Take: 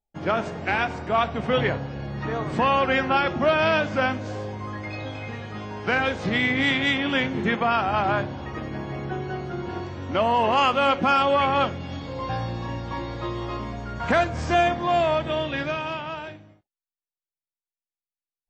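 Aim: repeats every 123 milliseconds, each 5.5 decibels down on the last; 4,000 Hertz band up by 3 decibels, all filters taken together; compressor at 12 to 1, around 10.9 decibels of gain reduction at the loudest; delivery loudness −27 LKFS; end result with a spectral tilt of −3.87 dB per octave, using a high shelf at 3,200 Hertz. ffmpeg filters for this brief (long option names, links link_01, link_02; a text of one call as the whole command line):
ffmpeg -i in.wav -af "highshelf=frequency=3200:gain=-6,equalizer=frequency=4000:width_type=o:gain=8.5,acompressor=threshold=-27dB:ratio=12,aecho=1:1:123|246|369|492|615|738|861:0.531|0.281|0.149|0.079|0.0419|0.0222|0.0118,volume=3.5dB" out.wav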